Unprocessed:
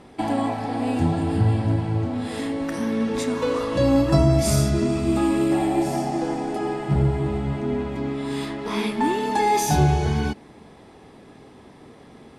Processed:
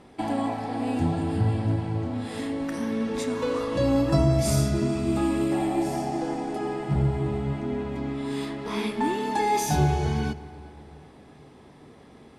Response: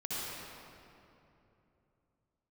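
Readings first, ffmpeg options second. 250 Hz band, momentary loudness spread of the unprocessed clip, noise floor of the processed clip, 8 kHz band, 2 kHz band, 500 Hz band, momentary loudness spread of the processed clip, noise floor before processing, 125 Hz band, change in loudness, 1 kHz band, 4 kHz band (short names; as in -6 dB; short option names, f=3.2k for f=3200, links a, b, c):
-3.5 dB, 9 LU, -51 dBFS, -4.0 dB, -4.0 dB, -3.5 dB, 9 LU, -47 dBFS, -3.5 dB, -3.5 dB, -4.0 dB, -4.0 dB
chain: -filter_complex "[0:a]asplit=2[a][b];[1:a]atrim=start_sample=2205[c];[b][c]afir=irnorm=-1:irlink=0,volume=-19dB[d];[a][d]amix=inputs=2:normalize=0,volume=-4.5dB"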